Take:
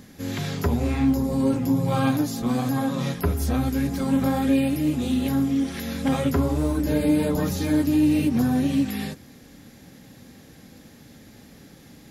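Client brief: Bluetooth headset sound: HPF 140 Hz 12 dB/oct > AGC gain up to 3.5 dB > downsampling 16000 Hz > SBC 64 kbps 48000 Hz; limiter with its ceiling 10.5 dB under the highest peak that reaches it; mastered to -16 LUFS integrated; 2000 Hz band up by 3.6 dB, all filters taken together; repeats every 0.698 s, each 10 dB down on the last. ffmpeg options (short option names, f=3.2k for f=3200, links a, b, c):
-af "equalizer=f=2k:t=o:g=4.5,alimiter=limit=-20.5dB:level=0:latency=1,highpass=140,aecho=1:1:698|1396|2094|2792:0.316|0.101|0.0324|0.0104,dynaudnorm=m=3.5dB,aresample=16000,aresample=44100,volume=13dB" -ar 48000 -c:a sbc -b:a 64k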